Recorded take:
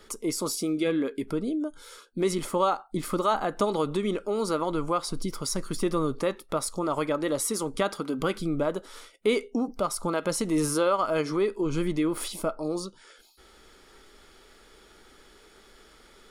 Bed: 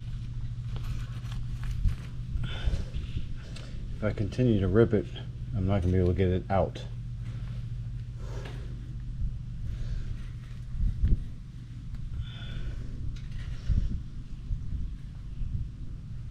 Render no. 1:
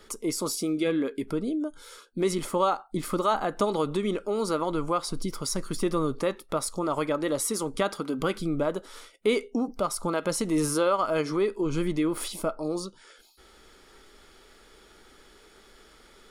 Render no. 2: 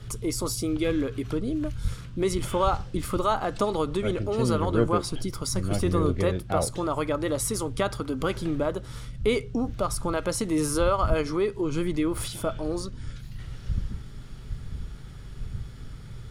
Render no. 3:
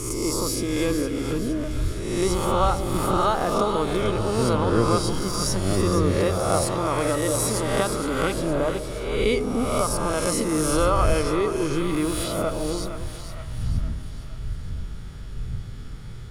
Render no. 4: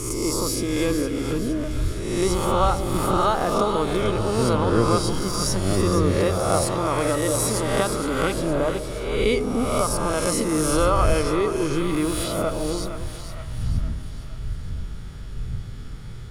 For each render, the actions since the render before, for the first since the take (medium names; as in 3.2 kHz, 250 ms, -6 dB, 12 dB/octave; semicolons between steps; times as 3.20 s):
no audible change
add bed -1.5 dB
reverse spectral sustain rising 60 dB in 1.12 s; two-band feedback delay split 650 Hz, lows 142 ms, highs 464 ms, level -9 dB
trim +1 dB